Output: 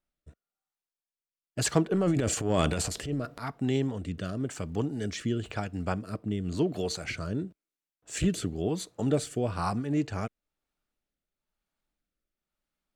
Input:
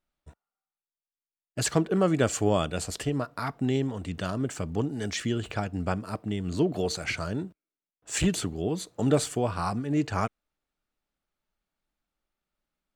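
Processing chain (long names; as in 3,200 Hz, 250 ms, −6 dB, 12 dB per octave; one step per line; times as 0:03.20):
0:01.92–0:03.43: transient designer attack −9 dB, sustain +10 dB
rotating-speaker cabinet horn 1 Hz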